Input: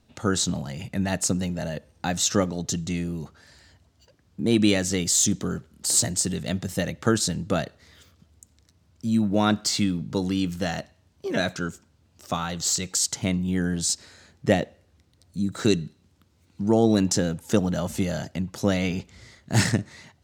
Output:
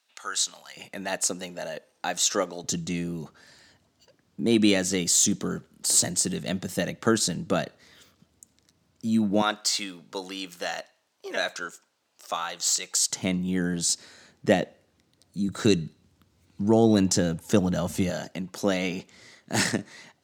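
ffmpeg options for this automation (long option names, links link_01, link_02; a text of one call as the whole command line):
ffmpeg -i in.wav -af "asetnsamples=nb_out_samples=441:pad=0,asendcmd='0.77 highpass f 420;2.64 highpass f 160;9.42 highpass f 590;13.1 highpass f 160;15.48 highpass f 75;18.1 highpass f 230',highpass=1300" out.wav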